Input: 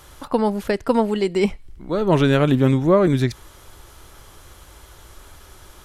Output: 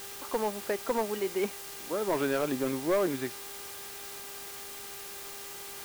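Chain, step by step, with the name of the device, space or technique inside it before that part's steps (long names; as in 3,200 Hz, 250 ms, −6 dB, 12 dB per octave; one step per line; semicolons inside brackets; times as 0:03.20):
aircraft radio (band-pass filter 350–2,400 Hz; hard clipping −13.5 dBFS, distortion −14 dB; hum with harmonics 400 Hz, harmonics 27, −42 dBFS −4 dB per octave; white noise bed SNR 10 dB)
level −8 dB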